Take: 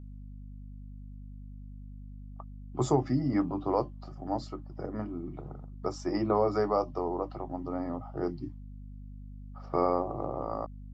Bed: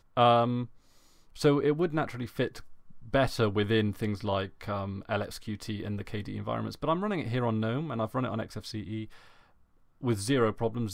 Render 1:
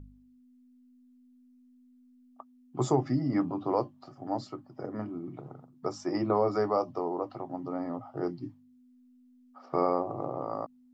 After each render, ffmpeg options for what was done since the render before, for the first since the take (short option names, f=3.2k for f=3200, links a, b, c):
-af "bandreject=f=50:t=h:w=4,bandreject=f=100:t=h:w=4,bandreject=f=150:t=h:w=4,bandreject=f=200:t=h:w=4"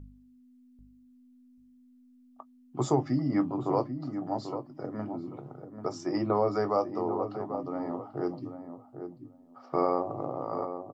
-filter_complex "[0:a]asplit=2[a][b];[b]adelay=20,volume=-14dB[c];[a][c]amix=inputs=2:normalize=0,asplit=2[d][e];[e]adelay=789,lowpass=f=1k:p=1,volume=-8dB,asplit=2[f][g];[g]adelay=789,lowpass=f=1k:p=1,volume=0.16,asplit=2[h][i];[i]adelay=789,lowpass=f=1k:p=1,volume=0.16[j];[d][f][h][j]amix=inputs=4:normalize=0"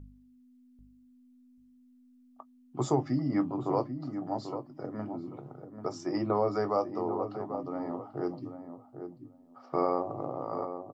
-af "volume=-1.5dB"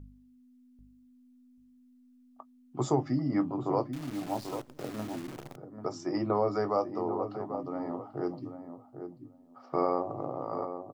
-filter_complex "[0:a]asettb=1/sr,asplit=3[a][b][c];[a]atrim=end=3.934[d];[b]atrim=start=3.93:end=5.56,asetpts=PTS-STARTPTS,afade=t=in:d=0.004:c=qsin,afade=t=out:st=1.626:d=0.004:c=qsin,acrusher=bits=8:dc=4:mix=0:aa=0.000001[e];[c]atrim=start=5.556[f];[d][e]acrossfade=d=0.004:c1=hsin:c2=qsin[g];[g][f]acrossfade=d=0.004:c1=qsin:c2=hsin"